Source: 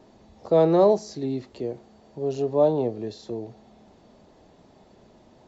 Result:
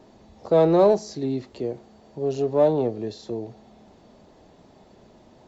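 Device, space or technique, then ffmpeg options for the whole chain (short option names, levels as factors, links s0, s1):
parallel distortion: -filter_complex "[0:a]asplit=2[s0][s1];[s1]asoftclip=type=hard:threshold=0.0891,volume=0.237[s2];[s0][s2]amix=inputs=2:normalize=0"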